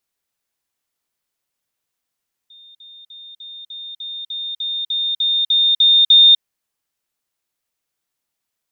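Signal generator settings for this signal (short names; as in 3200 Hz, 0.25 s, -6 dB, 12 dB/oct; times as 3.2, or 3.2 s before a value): level ladder 3640 Hz -41.5 dBFS, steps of 3 dB, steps 13, 0.25 s 0.05 s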